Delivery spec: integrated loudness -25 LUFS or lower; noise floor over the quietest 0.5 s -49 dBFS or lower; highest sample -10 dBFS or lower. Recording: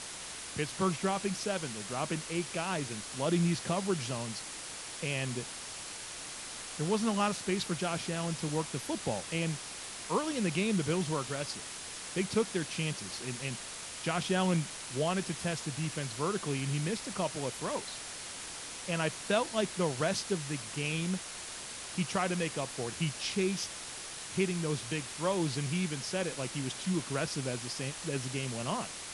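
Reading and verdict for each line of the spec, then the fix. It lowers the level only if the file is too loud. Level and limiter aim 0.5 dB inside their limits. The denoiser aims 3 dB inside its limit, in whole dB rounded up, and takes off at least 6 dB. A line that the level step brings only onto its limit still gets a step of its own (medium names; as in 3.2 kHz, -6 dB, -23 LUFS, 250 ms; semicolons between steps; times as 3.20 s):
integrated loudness -34.0 LUFS: pass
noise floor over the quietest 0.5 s -43 dBFS: fail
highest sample -15.5 dBFS: pass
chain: noise reduction 9 dB, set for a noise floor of -43 dBFS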